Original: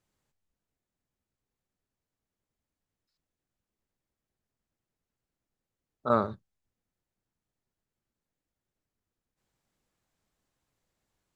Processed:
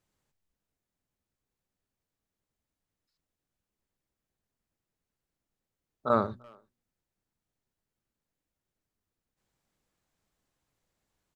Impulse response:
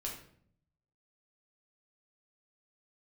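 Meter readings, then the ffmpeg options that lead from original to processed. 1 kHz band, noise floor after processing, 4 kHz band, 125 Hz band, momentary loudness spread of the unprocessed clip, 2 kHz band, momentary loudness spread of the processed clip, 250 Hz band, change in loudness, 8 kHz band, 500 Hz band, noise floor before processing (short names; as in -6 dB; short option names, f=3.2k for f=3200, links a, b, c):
0.0 dB, under -85 dBFS, 0.0 dB, -0.5 dB, 11 LU, 0.0 dB, 16 LU, -0.5 dB, 0.0 dB, n/a, 0.0 dB, under -85 dBFS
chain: -filter_complex "[0:a]bandreject=f=120.7:t=h:w=4,bandreject=f=241.4:t=h:w=4,bandreject=f=362.1:t=h:w=4,asplit=2[a][b];[b]adelay=340,highpass=300,lowpass=3.4k,asoftclip=type=hard:threshold=-20dB,volume=-26dB[c];[a][c]amix=inputs=2:normalize=0"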